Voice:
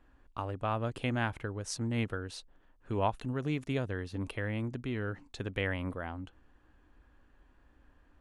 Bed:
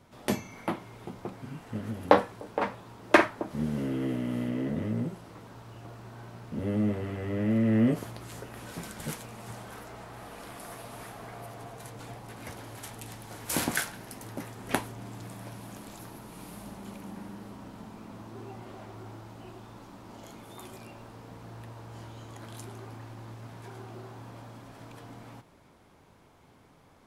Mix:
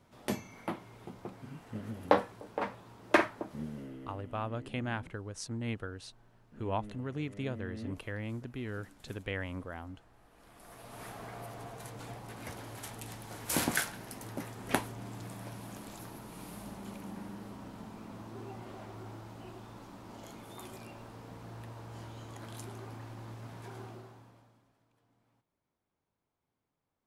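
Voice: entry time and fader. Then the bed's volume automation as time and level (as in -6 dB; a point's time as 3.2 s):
3.70 s, -4.0 dB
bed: 3.42 s -5.5 dB
4.22 s -20 dB
10.28 s -20 dB
11.07 s -1.5 dB
23.85 s -1.5 dB
24.85 s -27.5 dB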